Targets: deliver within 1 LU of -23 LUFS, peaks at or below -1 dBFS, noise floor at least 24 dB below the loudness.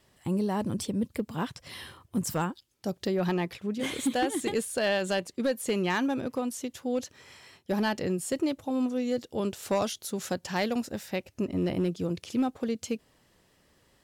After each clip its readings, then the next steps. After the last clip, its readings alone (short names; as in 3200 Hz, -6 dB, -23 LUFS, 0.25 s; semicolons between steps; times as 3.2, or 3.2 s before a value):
clipped 0.6%; flat tops at -20.0 dBFS; loudness -30.5 LUFS; peak -20.0 dBFS; loudness target -23.0 LUFS
-> clip repair -20 dBFS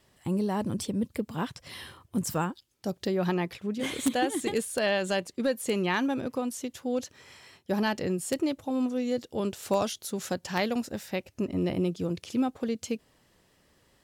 clipped 0.0%; loudness -30.5 LUFS; peak -11.0 dBFS; loudness target -23.0 LUFS
-> gain +7.5 dB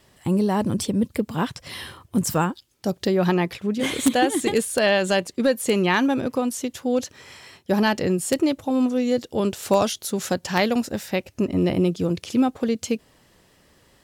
loudness -23.0 LUFS; peak -3.5 dBFS; noise floor -60 dBFS